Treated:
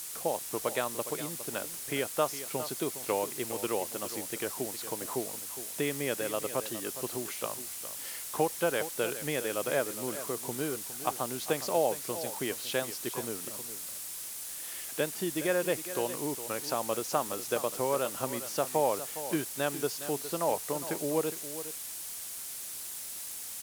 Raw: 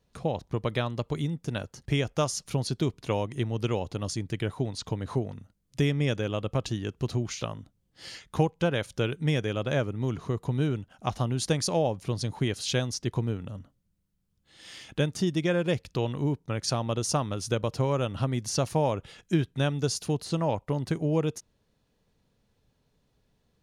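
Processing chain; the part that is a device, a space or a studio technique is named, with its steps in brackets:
wax cylinder (band-pass filter 380–2,100 Hz; tape wow and flutter; white noise bed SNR 14 dB)
parametric band 10,000 Hz +13 dB 1.6 octaves
single-tap delay 411 ms −12.5 dB

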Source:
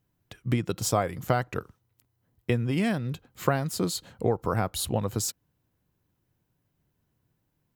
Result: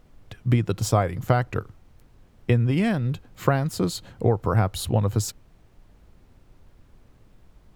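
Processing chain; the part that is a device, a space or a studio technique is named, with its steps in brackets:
car interior (parametric band 100 Hz +7 dB 0.76 octaves; high-shelf EQ 4,800 Hz −6.5 dB; brown noise bed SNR 25 dB)
level +3 dB

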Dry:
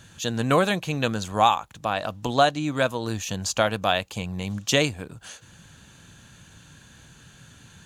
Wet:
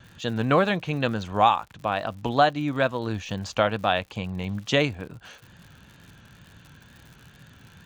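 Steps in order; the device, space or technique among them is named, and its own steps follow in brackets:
lo-fi chain (low-pass filter 3,300 Hz 12 dB per octave; tape wow and flutter; surface crackle 97 per second −39 dBFS)

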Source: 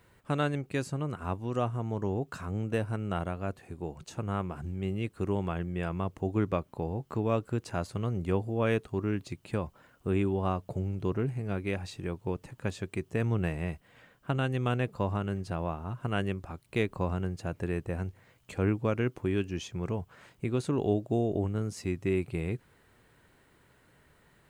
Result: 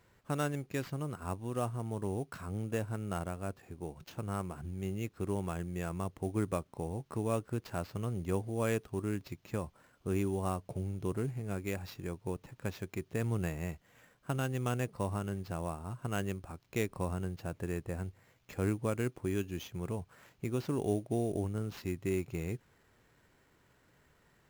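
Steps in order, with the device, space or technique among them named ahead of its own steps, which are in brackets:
early companding sampler (sample-rate reduction 9,400 Hz, jitter 0%; log-companded quantiser 8 bits)
level −4.5 dB

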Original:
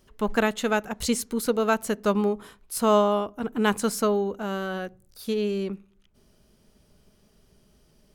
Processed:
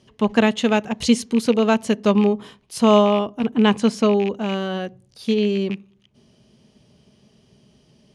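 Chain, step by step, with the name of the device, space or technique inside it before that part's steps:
0:03.54–0:04.05: high-shelf EQ 7,300 Hz −10 dB
car door speaker with a rattle (loose part that buzzes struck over −33 dBFS, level −27 dBFS; loudspeaker in its box 88–8,600 Hz, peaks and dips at 130 Hz +8 dB, 230 Hz +5 dB, 1,400 Hz −8 dB, 3,000 Hz +5 dB, 7,800 Hz −7 dB)
level +5 dB

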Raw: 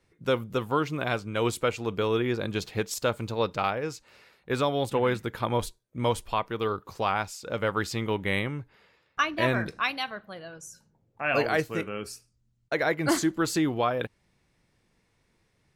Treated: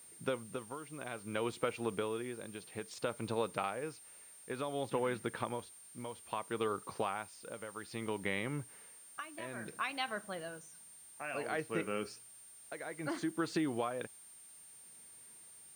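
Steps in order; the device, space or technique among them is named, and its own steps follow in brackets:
medium wave at night (band-pass filter 150–3,700 Hz; downward compressor, threshold −31 dBFS, peak gain reduction 11 dB; amplitude tremolo 0.59 Hz, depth 73%; steady tone 9,000 Hz −54 dBFS; white noise bed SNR 24 dB)

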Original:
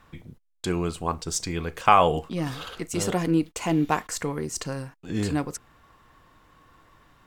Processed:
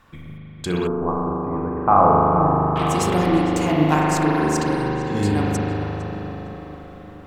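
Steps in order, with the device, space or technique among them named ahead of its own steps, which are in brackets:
dub delay into a spring reverb (feedback echo with a low-pass in the loop 456 ms, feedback 62%, low-pass 2,000 Hz, level −9 dB; spring reverb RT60 3.9 s, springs 39 ms, chirp 25 ms, DRR −4.5 dB)
0:00.87–0:02.76: inverse Chebyshev low-pass filter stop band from 6,600 Hz, stop band 80 dB
level +1.5 dB

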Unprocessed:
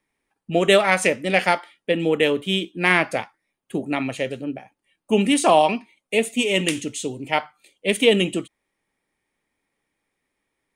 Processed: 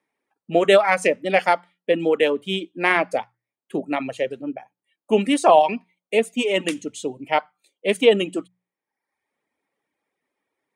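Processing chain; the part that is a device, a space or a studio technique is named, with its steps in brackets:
high-pass filter 79 Hz
filter by subtraction (in parallel: low-pass filter 640 Hz 12 dB per octave + polarity inversion)
on the sum: reverb reduction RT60 0.83 s
spectral tilt −2 dB per octave
mains-hum notches 60/120/180 Hz

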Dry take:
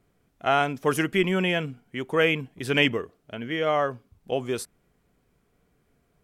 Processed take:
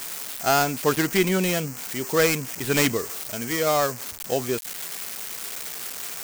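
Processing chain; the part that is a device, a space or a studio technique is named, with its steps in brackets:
0:01.37–0:02.15: dynamic equaliser 1,500 Hz, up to −7 dB, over −44 dBFS, Q 1.3
budget class-D amplifier (gap after every zero crossing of 0.13 ms; spike at every zero crossing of −17 dBFS)
level +2 dB

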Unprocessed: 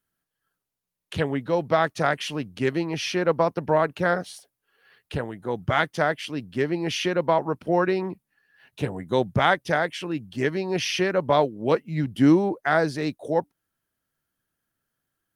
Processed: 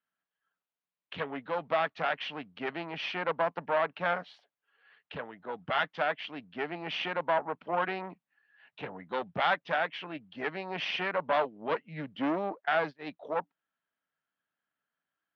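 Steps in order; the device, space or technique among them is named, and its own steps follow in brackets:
0:12.65–0:13.11: noise gate −25 dBFS, range −28 dB
guitar amplifier (tube saturation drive 18 dB, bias 0.65; bass and treble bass −15 dB, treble −4 dB; loudspeaker in its box 95–3,600 Hz, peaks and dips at 110 Hz −4 dB, 170 Hz +4 dB, 360 Hz −9 dB, 510 Hz −4 dB)

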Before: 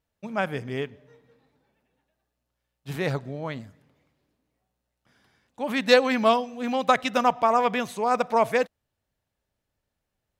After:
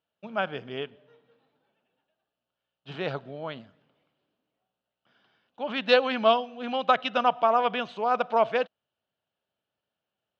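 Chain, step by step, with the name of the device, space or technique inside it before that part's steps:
kitchen radio (loudspeaker in its box 180–4,300 Hz, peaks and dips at 270 Hz −3 dB, 670 Hz +4 dB, 1,400 Hz +5 dB, 2,000 Hz −6 dB, 3,000 Hz +9 dB)
level −3.5 dB

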